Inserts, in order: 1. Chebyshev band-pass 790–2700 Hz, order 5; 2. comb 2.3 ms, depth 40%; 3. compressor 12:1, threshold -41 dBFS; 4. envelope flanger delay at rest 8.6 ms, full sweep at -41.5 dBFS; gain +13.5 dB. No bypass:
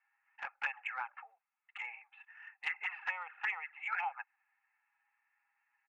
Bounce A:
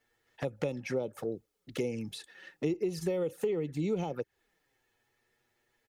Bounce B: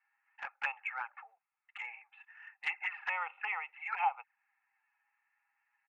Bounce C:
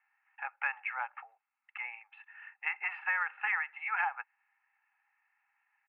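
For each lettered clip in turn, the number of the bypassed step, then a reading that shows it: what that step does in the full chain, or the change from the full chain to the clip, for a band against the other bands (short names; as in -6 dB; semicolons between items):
1, 500 Hz band +37.0 dB; 3, mean gain reduction 1.5 dB; 4, momentary loudness spread change +3 LU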